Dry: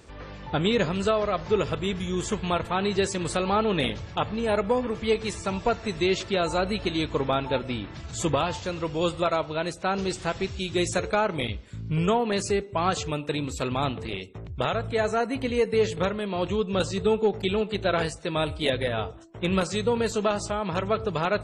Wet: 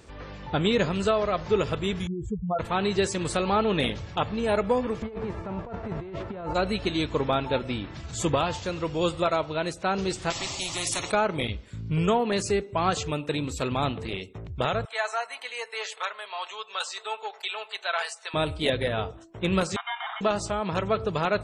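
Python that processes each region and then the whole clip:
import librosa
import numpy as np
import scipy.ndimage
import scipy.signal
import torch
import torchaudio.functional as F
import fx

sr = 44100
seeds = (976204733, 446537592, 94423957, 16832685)

y = fx.chain(x, sr, fx.spec_expand(power=3.6),
    fx.lowpass(hz=1900.0, slope=6),
    fx.peak_eq(hz=380.0, db=-7.0, octaves=0.48), at=(2.07, 2.59))
y = fx.envelope_flatten(y, sr, power=0.6, at=(5.01, 6.54), fade=0.02)
y = fx.lowpass(y, sr, hz=1000.0, slope=12, at=(5.01, 6.54), fade=0.02)
y = fx.over_compress(y, sr, threshold_db=-34.0, ratio=-1.0, at=(5.01, 6.54), fade=0.02)
y = fx.chain(y, sr, fx.fixed_phaser(hz=310.0, stages=8),
    fx.spectral_comp(ratio=4.0), at=(10.3, 11.12))
y = fx.chain(y, sr, fx.highpass(hz=790.0, slope=24),
    fx.comb(ms=4.6, depth=0.39), at=(14.85, 18.34))
y = fx.chain(y, sr, fx.tilt_eq(slope=1.5),
    fx.sample_hold(seeds[0], rate_hz=2600.0, jitter_pct=0),
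    fx.brickwall_bandpass(low_hz=660.0, high_hz=3800.0), at=(19.76, 20.21))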